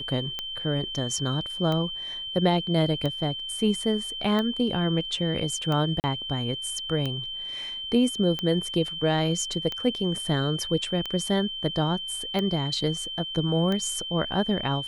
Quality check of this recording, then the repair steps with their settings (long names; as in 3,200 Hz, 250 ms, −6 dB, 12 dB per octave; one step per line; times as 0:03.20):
scratch tick 45 rpm −16 dBFS
whistle 3,100 Hz −32 dBFS
0:06.00–0:06.04: drop-out 39 ms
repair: click removal
notch filter 3,100 Hz, Q 30
repair the gap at 0:06.00, 39 ms